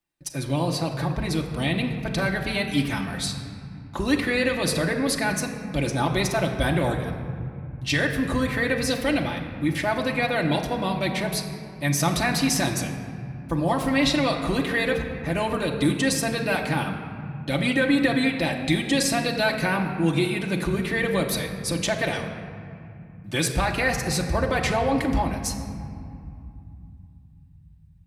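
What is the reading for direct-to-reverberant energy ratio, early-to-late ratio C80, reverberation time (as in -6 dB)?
-0.5 dB, 7.5 dB, 2.6 s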